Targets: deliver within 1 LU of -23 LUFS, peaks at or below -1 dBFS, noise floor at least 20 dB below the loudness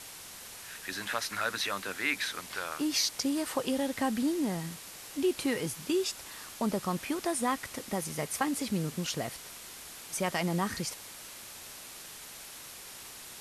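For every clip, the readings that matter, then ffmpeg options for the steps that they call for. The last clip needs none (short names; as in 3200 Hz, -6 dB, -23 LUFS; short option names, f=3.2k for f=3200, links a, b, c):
noise floor -47 dBFS; noise floor target -53 dBFS; loudness -32.5 LUFS; peak -15.5 dBFS; loudness target -23.0 LUFS
-> -af "afftdn=nr=6:nf=-47"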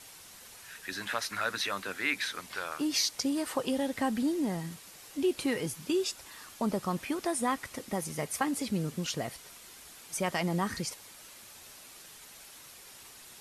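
noise floor -52 dBFS; noise floor target -53 dBFS
-> -af "afftdn=nr=6:nf=-52"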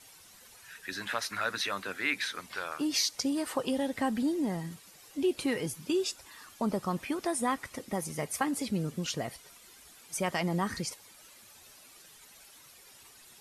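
noise floor -56 dBFS; loudness -32.5 LUFS; peak -15.5 dBFS; loudness target -23.0 LUFS
-> -af "volume=9.5dB"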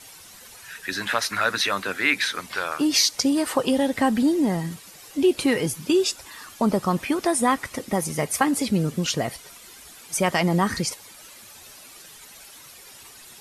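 loudness -23.0 LUFS; peak -6.0 dBFS; noise floor -46 dBFS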